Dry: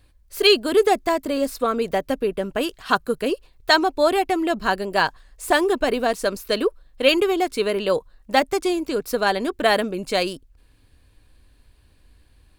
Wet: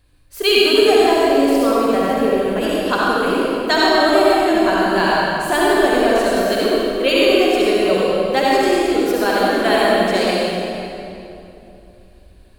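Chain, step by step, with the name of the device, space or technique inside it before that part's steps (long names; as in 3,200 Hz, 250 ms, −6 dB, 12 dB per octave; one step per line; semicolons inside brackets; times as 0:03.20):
tunnel (flutter between parallel walls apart 7.5 metres, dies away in 0.21 s; convolution reverb RT60 2.9 s, pre-delay 57 ms, DRR −6.5 dB)
level −2 dB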